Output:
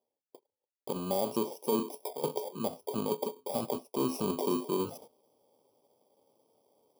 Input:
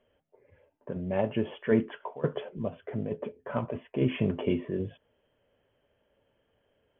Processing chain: FFT order left unsorted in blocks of 32 samples; HPF 300 Hz 12 dB/oct; gate -57 dBFS, range -42 dB; high shelf 2700 Hz -11 dB; limiter -23.5 dBFS, peak gain reduction 10 dB; reverse; upward compressor, threshold -42 dBFS; reverse; Butterworth band-stop 1800 Hz, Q 1.3; gain +6 dB

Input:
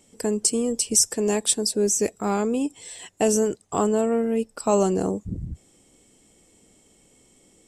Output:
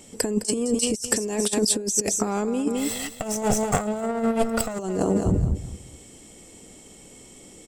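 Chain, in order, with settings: 2.77–4.79 minimum comb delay 1.5 ms; feedback echo 0.21 s, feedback 27%, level -13 dB; negative-ratio compressor -27 dBFS, ratio -0.5; gain +5 dB

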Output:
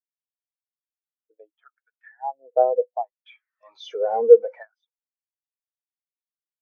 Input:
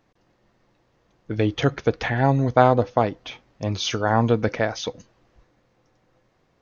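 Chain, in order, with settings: LFO high-pass sine 0.66 Hz 420–1600 Hz; 3.26–4.63 power-law curve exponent 0.5; spectral expander 2.5:1; gain -2.5 dB

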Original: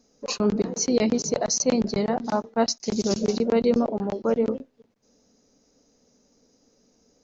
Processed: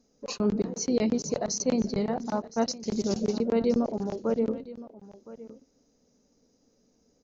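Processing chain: low shelf 460 Hz +5 dB; echo 1.015 s -17.5 dB; gain -7 dB

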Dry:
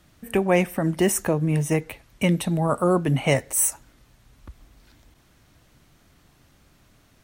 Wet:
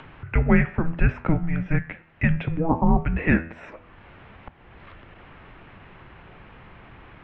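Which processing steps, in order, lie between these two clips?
mistuned SSB -330 Hz 190–3000 Hz; de-hum 81.75 Hz, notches 36; upward compressor, threshold -36 dBFS; gain +3 dB

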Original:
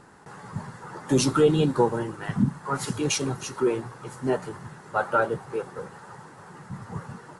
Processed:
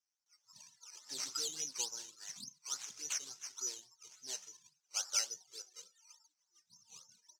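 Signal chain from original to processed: spectral noise reduction 26 dB; decimation with a swept rate 10×, swing 60% 3.5 Hz; band-pass 6000 Hz, Q 6; gain +5 dB

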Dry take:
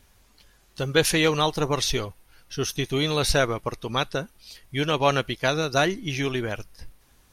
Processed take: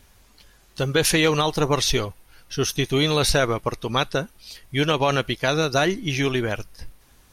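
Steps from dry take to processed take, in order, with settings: limiter -13 dBFS, peak gain reduction 6.5 dB; gain +4 dB

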